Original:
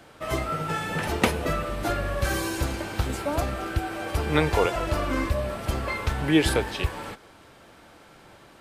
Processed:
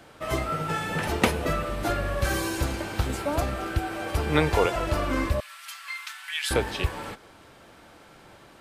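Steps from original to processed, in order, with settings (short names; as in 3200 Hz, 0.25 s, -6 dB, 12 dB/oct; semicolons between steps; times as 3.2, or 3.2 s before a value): 5.4–6.51 Bessel high-pass 2000 Hz, order 6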